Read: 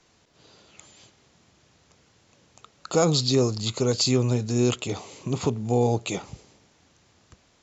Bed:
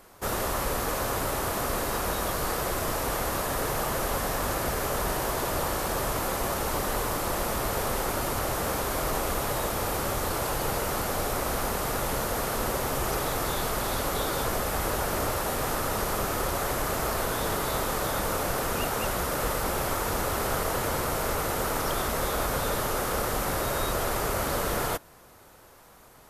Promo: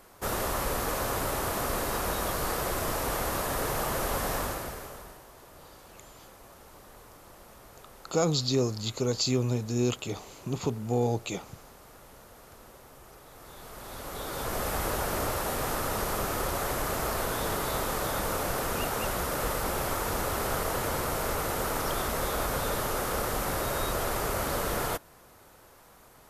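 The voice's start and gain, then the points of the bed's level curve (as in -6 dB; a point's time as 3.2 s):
5.20 s, -5.0 dB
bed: 4.38 s -1.5 dB
5.26 s -23 dB
13.25 s -23 dB
14.65 s -2 dB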